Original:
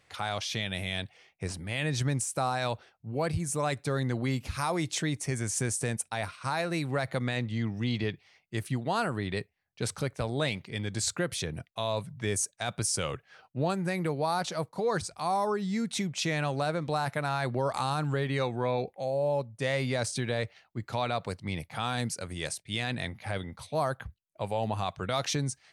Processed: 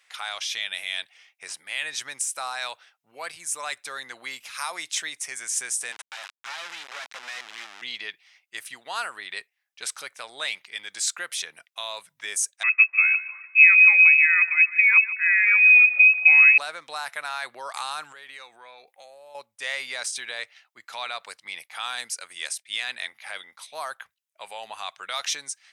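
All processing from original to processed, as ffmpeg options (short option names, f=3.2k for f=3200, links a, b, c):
-filter_complex "[0:a]asettb=1/sr,asplit=3[a][b][c];[a]atrim=end=5.924[d];[b]atrim=start=5.92:end=7.82,asetpts=PTS-STARTPTS,afade=t=in:d=0.004:c=qsin,afade=t=out:st=1.896:d=0.004:c=qsin,bandreject=f=740:w=11,acrusher=bits=3:dc=4:mix=0:aa=0.000001,highpass=120,lowpass=5k[e];[c]atrim=start=7.816[f];[d][e]acrossfade=d=0.004:c1=hsin:c2=qsin[g];[g][f]acrossfade=d=0.004:c1=qsin:c2=hsin,asettb=1/sr,asplit=3[h][i][j];[h]atrim=end=12.634[k];[i]atrim=start=12.63:end=16.58,asetpts=PTS-STARTPTS,afade=t=in:d=0.004:c=qsin,afade=t=out:st=3.946:d=0.004:c=qsin,equalizer=f=150:w=0.59:g=14.5,aecho=1:1:148|296|444|592:0.168|0.0705|0.0296|0.0124,atrim=end_sample=174195,lowpass=f=2.3k:t=q:w=0.5098,lowpass=f=2.3k:t=q:w=0.6013,lowpass=f=2.3k:t=q:w=0.9,lowpass=f=2.3k:t=q:w=2.563,afreqshift=-2700[l];[j]atrim=start=16.576[m];[k][l]acrossfade=d=0.004:c1=hsin:c2=qsin[n];[n][m]acrossfade=d=0.004:c1=qsin:c2=hsin,asettb=1/sr,asplit=3[o][p][q];[o]atrim=end=18.124[r];[p]atrim=start=18.12:end=19.35,asetpts=PTS-STARTPTS,afade=t=in:d=0.004:c=qsin,afade=t=out:st=1.226:d=0.004:c=qsin,highshelf=f=11k:g=7,acompressor=threshold=-36dB:ratio=5:attack=3.2:release=140:knee=1:detection=peak[s];[q]atrim=start=19.346[t];[r][s]acrossfade=d=0.004:c1=hsin:c2=qsin[u];[u][t]acrossfade=d=0.004:c1=qsin:c2=hsin,highpass=1.4k,bandreject=f=4.4k:w=14,volume=5.5dB"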